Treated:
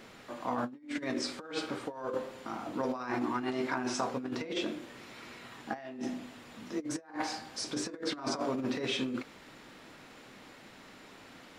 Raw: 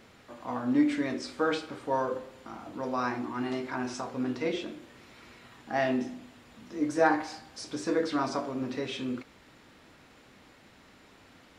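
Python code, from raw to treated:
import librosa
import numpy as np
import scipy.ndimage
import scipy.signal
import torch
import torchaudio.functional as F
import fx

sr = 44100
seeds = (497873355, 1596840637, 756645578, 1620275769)

y = fx.over_compress(x, sr, threshold_db=-34.0, ratio=-0.5)
y = fx.peak_eq(y, sr, hz=64.0, db=-12.0, octaves=1.2)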